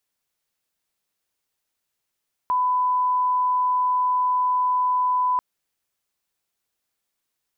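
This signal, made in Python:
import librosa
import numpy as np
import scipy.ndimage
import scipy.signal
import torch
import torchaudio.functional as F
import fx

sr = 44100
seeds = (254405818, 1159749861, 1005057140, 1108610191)

y = fx.lineup_tone(sr, length_s=2.89, level_db=-18.0)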